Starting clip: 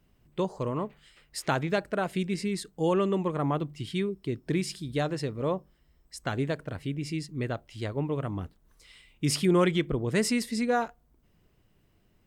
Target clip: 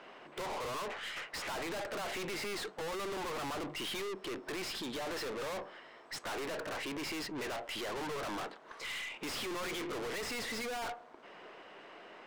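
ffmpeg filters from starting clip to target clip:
ffmpeg -i in.wav -filter_complex "[0:a]highpass=490,asettb=1/sr,asplit=3[link_01][link_02][link_03];[link_01]atrim=end=4.214[link_04];[link_02]atrim=start=4.21:end=5.07,asetpts=PTS-STARTPTS,afade=type=in:duration=0.004:curve=qsin,afade=type=out:start_time=0.856:duration=0.004:curve=qsin,acompressor=threshold=-38dB:ratio=6[link_05];[link_03]atrim=start=5.066[link_06];[link_04][link_05]acrossfade=duration=0.004:curve1=hsin:curve2=qsin[link_07];[link_07][link_06]acrossfade=duration=0.004:curve1=qsin:curve2=hsin,asplit=2[link_08][link_09];[link_09]highpass=frequency=720:poles=1,volume=35dB,asoftclip=type=tanh:threshold=-12.5dB[link_10];[link_08][link_10]amix=inputs=2:normalize=0,lowpass=frequency=1400:poles=1,volume=-6dB,adynamicsmooth=sensitivity=2:basefreq=5000,aeval=exprs='(tanh(89.1*val(0)+0.2)-tanh(0.2))/89.1':channel_layout=same,volume=1dB" out.wav

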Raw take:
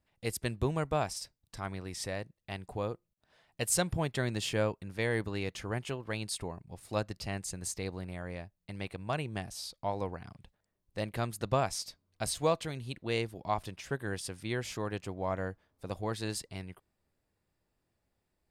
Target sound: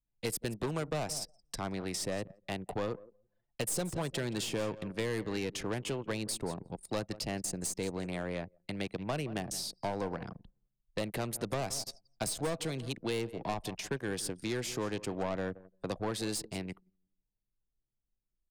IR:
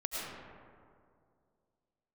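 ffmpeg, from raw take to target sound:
-filter_complex "[1:a]atrim=start_sample=2205,atrim=end_sample=3087[link_01];[0:a][link_01]afir=irnorm=-1:irlink=0,aeval=exprs='(tanh(44.7*val(0)+0.3)-tanh(0.3))/44.7':channel_layout=same,acrossover=split=140[link_02][link_03];[link_02]aecho=1:1:6:0.65[link_04];[link_03]acontrast=72[link_05];[link_04][link_05]amix=inputs=2:normalize=0,aecho=1:1:171|342|513:0.133|0.0507|0.0193,anlmdn=0.0398,acrossover=split=310|820[link_06][link_07][link_08];[link_06]acompressor=threshold=-42dB:ratio=4[link_09];[link_07]acompressor=threshold=-40dB:ratio=4[link_10];[link_08]acompressor=threshold=-48dB:ratio=4[link_11];[link_09][link_10][link_11]amix=inputs=3:normalize=0,highshelf=frequency=3000:gain=8,volume=4dB"

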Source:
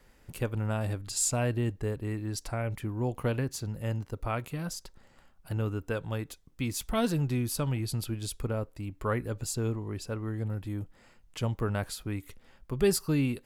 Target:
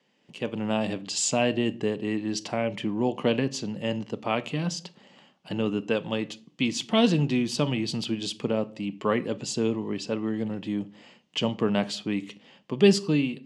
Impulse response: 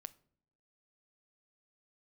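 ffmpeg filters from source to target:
-filter_complex "[0:a]dynaudnorm=framelen=130:gausssize=7:maxgain=13dB,highpass=frequency=170:width=0.5412,highpass=frequency=170:width=1.3066,equalizer=frequency=200:width_type=q:width=4:gain=6,equalizer=frequency=1400:width_type=q:width=4:gain=-9,equalizer=frequency=3000:width_type=q:width=4:gain=10,lowpass=frequency=6600:width=0.5412,lowpass=frequency=6600:width=1.3066[link_01];[1:a]atrim=start_sample=2205,afade=type=out:start_time=0.32:duration=0.01,atrim=end_sample=14553[link_02];[link_01][link_02]afir=irnorm=-1:irlink=0"

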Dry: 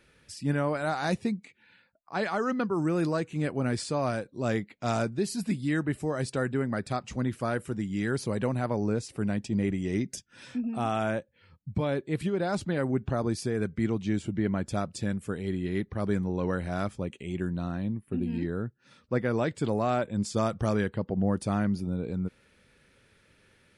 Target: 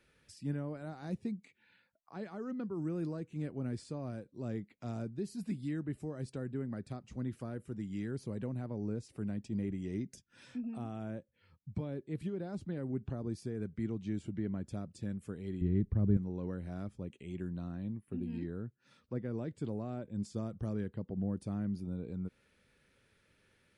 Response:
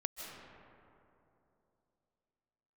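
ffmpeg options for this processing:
-filter_complex "[0:a]asettb=1/sr,asplit=3[link_01][link_02][link_03];[link_01]atrim=end=15.614[link_04];[link_02]atrim=start=15.61:end=16.17,asetpts=PTS-STARTPTS,afade=type=in:duration=0.004:curve=qsin,afade=type=out:start_time=0.556:duration=0.004:curve=qsin,aemphasis=mode=reproduction:type=riaa[link_05];[link_03]atrim=start=16.166[link_06];[link_04][link_05]acrossfade=duration=0.004:curve1=hsin:curve2=qsin[link_07];[link_07][link_06]acrossfade=duration=0.004:curve1=qsin:curve2=hsin,acrossover=split=430[link_08][link_09];[link_09]acompressor=threshold=-47dB:ratio=3[link_10];[link_08][link_10]amix=inputs=2:normalize=0,volume=-8dB"

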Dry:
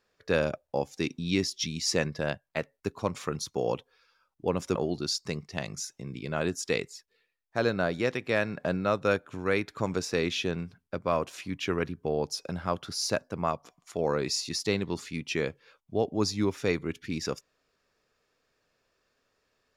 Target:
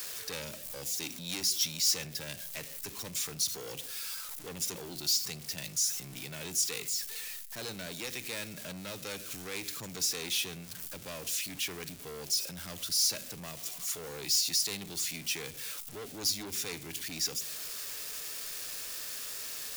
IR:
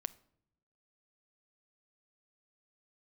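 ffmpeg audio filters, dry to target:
-filter_complex "[0:a]aeval=exprs='val(0)+0.5*0.0119*sgn(val(0))':channel_layout=same,acrossover=split=130|600|1800[link_01][link_02][link_03][link_04];[link_03]acompressor=threshold=-49dB:ratio=6[link_05];[link_01][link_02][link_05][link_04]amix=inputs=4:normalize=0[link_06];[1:a]atrim=start_sample=2205[link_07];[link_06][link_07]afir=irnorm=-1:irlink=0,asoftclip=type=tanh:threshold=-31.5dB,crystalizer=i=9:c=0,volume=-9dB"

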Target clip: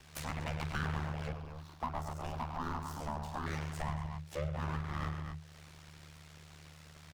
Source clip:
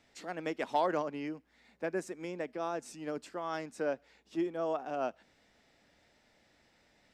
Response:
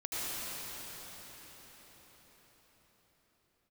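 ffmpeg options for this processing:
-filter_complex "[0:a]aecho=1:1:47|48|100|137|239:0.316|0.282|0.355|0.299|0.251,aeval=exprs='abs(val(0))':channel_layout=same,afreqshift=-120,aeval=exprs='val(0)*sin(2*PI*37*n/s)':channel_layout=same,asettb=1/sr,asplit=3[link_01][link_02][link_03];[link_01]atrim=end=1.324[link_04];[link_02]atrim=start=1.32:end=3.46,asetpts=PTS-STARTPTS,afade=type=in:duration=0.004:curve=qsin,afade=type=out:start_time=2.136:duration=0.004:curve=qsin,equalizer=frequency=125:width_type=o:width=1:gain=-12,equalizer=frequency=250:width_type=o:width=1:gain=7,equalizer=frequency=500:width_type=o:width=1:gain=-8,equalizer=frequency=1000:width_type=o:width=1:gain=10,equalizer=frequency=2000:width_type=o:width=1:gain=-11,equalizer=frequency=8000:width_type=o:width=1:gain=-6[link_05];[link_03]atrim=start=3.456[link_06];[link_04][link_05]acrossfade=duration=0.004:curve1=hsin:curve2=qsin[link_07];[link_07][link_06]acrossfade=duration=0.004:curve1=qsin:curve2=hsin,acompressor=threshold=-55dB:ratio=3,volume=15dB"

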